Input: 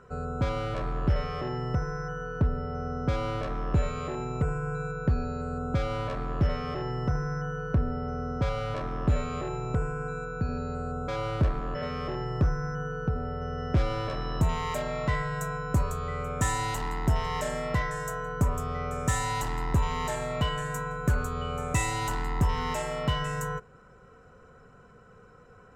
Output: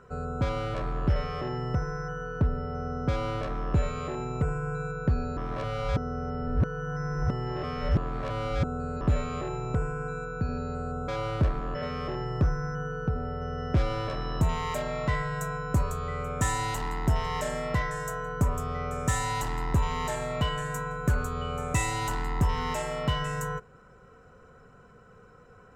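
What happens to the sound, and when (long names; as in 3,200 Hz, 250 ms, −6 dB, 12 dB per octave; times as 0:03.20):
0:05.37–0:09.01: reverse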